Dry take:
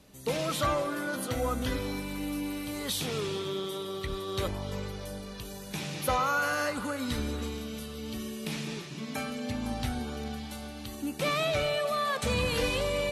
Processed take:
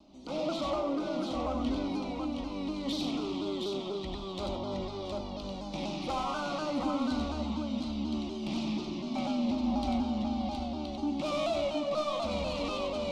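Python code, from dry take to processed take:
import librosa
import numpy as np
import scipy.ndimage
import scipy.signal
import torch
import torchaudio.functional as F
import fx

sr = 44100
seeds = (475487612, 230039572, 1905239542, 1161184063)

p1 = scipy.signal.sosfilt(scipy.signal.butter(4, 4900.0, 'lowpass', fs=sr, output='sos'), x)
p2 = fx.peak_eq(p1, sr, hz=380.0, db=7.0, octaves=1.8)
p3 = fx.rider(p2, sr, range_db=10, speed_s=2.0)
p4 = p2 + (p3 * 10.0 ** (0.0 / 20.0))
p5 = 10.0 ** (-19.0 / 20.0) * np.tanh(p4 / 10.0 ** (-19.0 / 20.0))
p6 = fx.fixed_phaser(p5, sr, hz=450.0, stages=6)
p7 = p6 + fx.echo_multitap(p6, sr, ms=(94, 718), db=(-3.5, -4.0), dry=0)
p8 = fx.vibrato_shape(p7, sr, shape='saw_down', rate_hz=4.1, depth_cents=100.0)
y = p8 * 10.0 ** (-7.0 / 20.0)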